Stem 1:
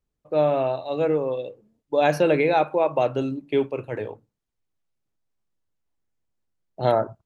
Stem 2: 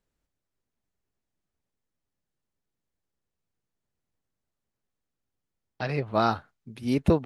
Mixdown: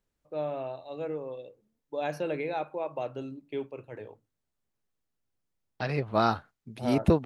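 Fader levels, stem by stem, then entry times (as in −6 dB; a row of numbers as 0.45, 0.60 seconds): −12.5, −1.0 decibels; 0.00, 0.00 seconds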